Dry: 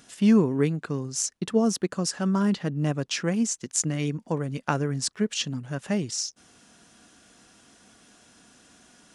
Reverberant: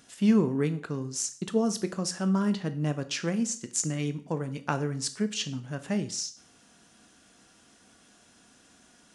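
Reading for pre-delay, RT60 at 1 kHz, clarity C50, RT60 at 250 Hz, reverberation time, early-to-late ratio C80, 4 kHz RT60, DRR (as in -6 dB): 11 ms, 0.45 s, 15.0 dB, 0.45 s, 0.50 s, 19.5 dB, 0.45 s, 10.5 dB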